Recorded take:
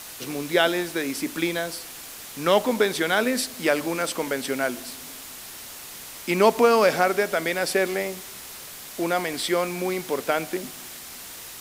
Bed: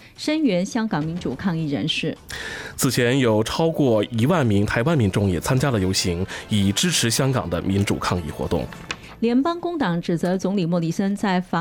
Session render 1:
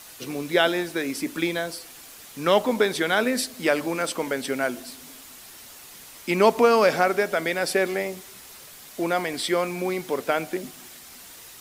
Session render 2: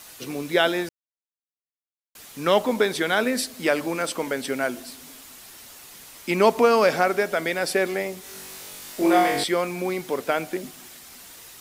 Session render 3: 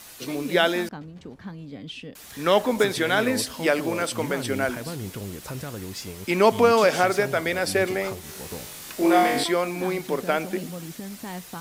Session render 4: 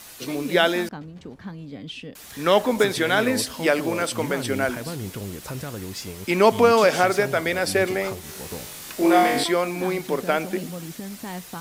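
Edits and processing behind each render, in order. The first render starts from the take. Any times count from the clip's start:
noise reduction 6 dB, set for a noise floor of -40 dBFS
0.89–2.15 s: mute; 8.21–9.44 s: flutter echo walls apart 3.6 m, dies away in 0.77 s
add bed -15 dB
trim +1.5 dB

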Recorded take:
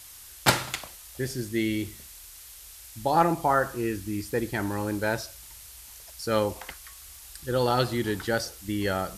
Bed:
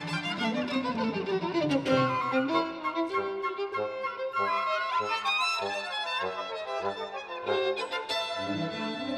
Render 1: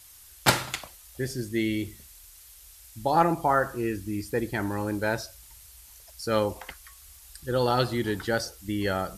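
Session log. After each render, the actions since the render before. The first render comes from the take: noise reduction 6 dB, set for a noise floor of -47 dBFS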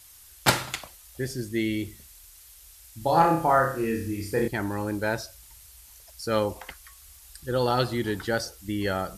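2.98–4.48 s: flutter echo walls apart 5.3 m, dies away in 0.48 s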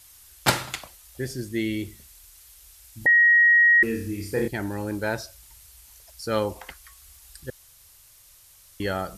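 3.06–3.83 s: bleep 1.89 kHz -13 dBFS; 4.49–4.91 s: peaking EQ 1.1 kHz -7.5 dB 0.52 oct; 7.50–8.80 s: room tone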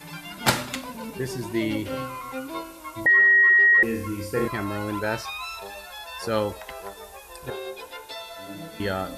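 add bed -6.5 dB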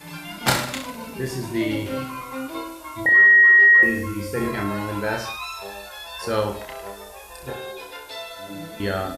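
reverse bouncing-ball echo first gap 30 ms, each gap 1.15×, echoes 5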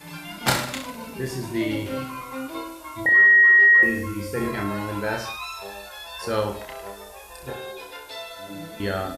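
trim -1.5 dB

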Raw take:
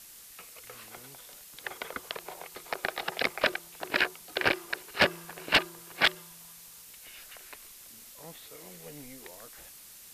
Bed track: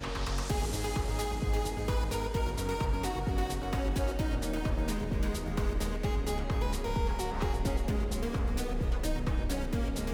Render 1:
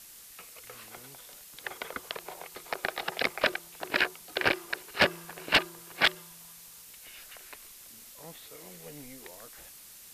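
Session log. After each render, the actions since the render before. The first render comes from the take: no audible change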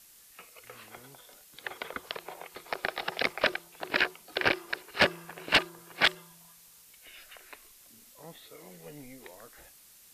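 noise print and reduce 6 dB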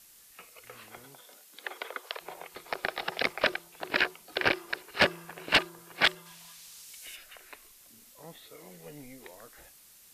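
1.04–2.20 s: high-pass 120 Hz -> 480 Hz 24 dB/octave; 6.25–7.15 s: peaking EQ 2.4 kHz -> 8 kHz +10.5 dB 2.7 oct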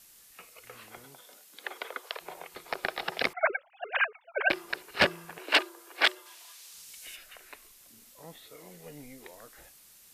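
3.33–4.50 s: formants replaced by sine waves; 5.38–6.74 s: steep high-pass 280 Hz 48 dB/octave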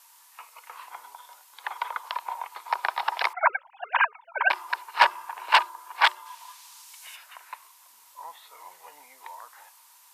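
resonant high-pass 950 Hz, resonance Q 9.7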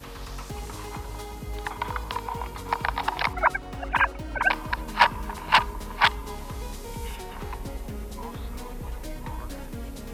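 add bed track -5 dB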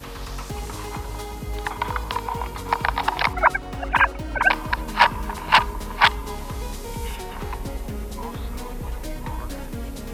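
trim +4.5 dB; peak limiter -2 dBFS, peak gain reduction 2.5 dB

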